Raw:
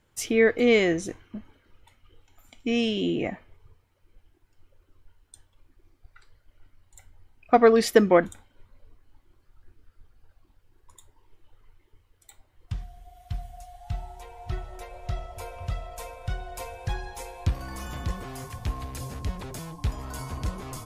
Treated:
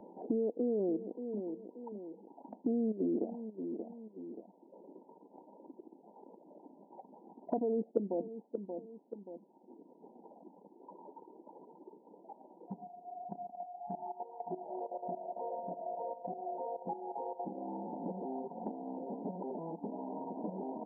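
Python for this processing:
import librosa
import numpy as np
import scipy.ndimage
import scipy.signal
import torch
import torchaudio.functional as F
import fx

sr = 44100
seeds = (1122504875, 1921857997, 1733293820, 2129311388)

p1 = fx.env_lowpass_down(x, sr, base_hz=540.0, full_db=-21.5)
p2 = fx.level_steps(p1, sr, step_db=14)
p3 = fx.brickwall_bandpass(p2, sr, low_hz=180.0, high_hz=1000.0)
p4 = p3 + fx.echo_feedback(p3, sr, ms=580, feedback_pct=19, wet_db=-15.0, dry=0)
p5 = fx.band_squash(p4, sr, depth_pct=70)
y = p5 * 10.0 ** (3.0 / 20.0)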